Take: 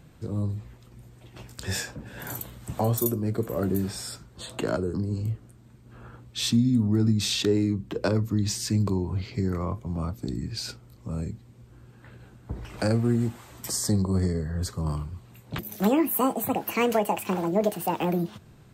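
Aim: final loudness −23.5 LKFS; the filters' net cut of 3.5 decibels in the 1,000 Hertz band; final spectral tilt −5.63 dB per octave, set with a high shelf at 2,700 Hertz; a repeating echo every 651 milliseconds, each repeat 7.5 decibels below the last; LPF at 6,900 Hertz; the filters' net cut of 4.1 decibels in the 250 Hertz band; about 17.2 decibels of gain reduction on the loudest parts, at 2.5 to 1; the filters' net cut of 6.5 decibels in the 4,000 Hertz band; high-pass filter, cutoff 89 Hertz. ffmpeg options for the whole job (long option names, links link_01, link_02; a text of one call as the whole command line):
ffmpeg -i in.wav -af "highpass=89,lowpass=6900,equalizer=frequency=250:width_type=o:gain=-5,equalizer=frequency=1000:width_type=o:gain=-3.5,highshelf=frequency=2700:gain=-4.5,equalizer=frequency=4000:width_type=o:gain=-3.5,acompressor=threshold=-49dB:ratio=2.5,aecho=1:1:651|1302|1953|2604|3255:0.422|0.177|0.0744|0.0312|0.0131,volume=22dB" out.wav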